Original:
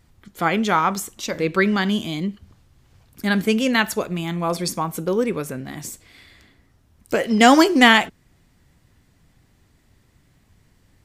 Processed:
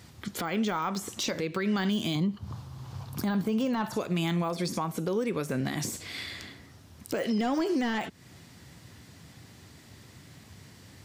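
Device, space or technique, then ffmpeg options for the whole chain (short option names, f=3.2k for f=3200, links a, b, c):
broadcast voice chain: -filter_complex "[0:a]asettb=1/sr,asplit=3[a][b][c];[a]atrim=end=2.154[d];[b]atrim=start=2.15:end=3.97,asetpts=PTS-STARTPTS,afade=t=in:d=0.004:c=qsin,afade=t=out:st=1.816:d=0.004:c=qsin,equalizer=f=125:t=o:w=1:g=11,equalizer=f=1k:t=o:w=1:g=11,equalizer=f=2k:t=o:w=1:g=-6,equalizer=f=8k:t=o:w=1:g=-3[e];[c]atrim=start=3.966[f];[d][e]acrossfade=d=0.004:c1=hsin:c2=qsin[g];[g][f]acrossfade=d=0.004:c1=qsin:c2=hsin,highpass=f=81:w=0.5412,highpass=f=81:w=1.3066,deesser=0.8,acompressor=threshold=-32dB:ratio=4,equalizer=f=4.8k:t=o:w=1.3:g=5,alimiter=level_in=5dB:limit=-24dB:level=0:latency=1:release=172,volume=-5dB,volume=8.5dB"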